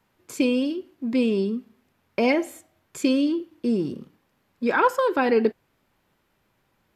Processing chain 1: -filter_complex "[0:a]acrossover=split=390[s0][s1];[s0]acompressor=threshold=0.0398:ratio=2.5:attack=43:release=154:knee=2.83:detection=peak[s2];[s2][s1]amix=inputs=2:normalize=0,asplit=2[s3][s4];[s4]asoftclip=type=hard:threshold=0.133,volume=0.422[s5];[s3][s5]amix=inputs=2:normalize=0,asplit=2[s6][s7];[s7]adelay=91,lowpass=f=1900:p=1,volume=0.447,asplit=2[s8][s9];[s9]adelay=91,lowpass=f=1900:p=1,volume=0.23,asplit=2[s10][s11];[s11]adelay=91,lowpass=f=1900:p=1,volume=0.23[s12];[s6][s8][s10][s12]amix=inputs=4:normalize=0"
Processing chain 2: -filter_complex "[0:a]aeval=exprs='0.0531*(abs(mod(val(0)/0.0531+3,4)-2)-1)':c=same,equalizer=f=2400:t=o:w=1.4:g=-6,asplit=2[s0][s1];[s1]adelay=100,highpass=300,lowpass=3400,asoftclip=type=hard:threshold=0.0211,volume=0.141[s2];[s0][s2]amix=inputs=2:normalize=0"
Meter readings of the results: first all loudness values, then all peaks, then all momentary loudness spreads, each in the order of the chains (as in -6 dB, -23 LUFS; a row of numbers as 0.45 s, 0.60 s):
-22.0 LUFS, -34.0 LUFS; -6.5 dBFS, -24.5 dBFS; 14 LU, 11 LU